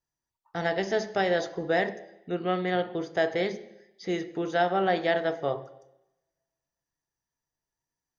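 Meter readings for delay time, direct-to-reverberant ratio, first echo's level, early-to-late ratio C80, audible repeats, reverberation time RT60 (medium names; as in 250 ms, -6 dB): no echo, 10.0 dB, no echo, 17.5 dB, no echo, 0.90 s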